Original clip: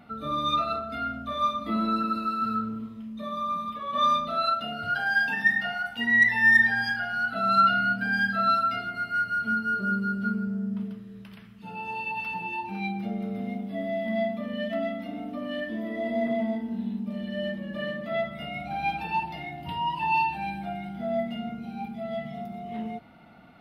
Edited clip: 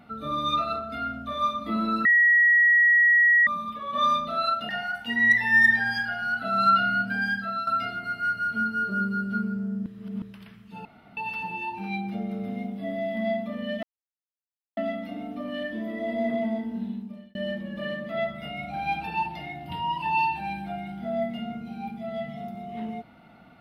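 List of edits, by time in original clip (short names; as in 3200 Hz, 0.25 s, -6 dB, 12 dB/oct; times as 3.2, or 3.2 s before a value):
2.05–3.47 bleep 1910 Hz -15 dBFS
4.69–5.6 cut
8.06–8.58 fade out, to -11 dB
10.77–11.13 reverse
11.76–12.08 room tone
14.74 insert silence 0.94 s
16.79–17.32 fade out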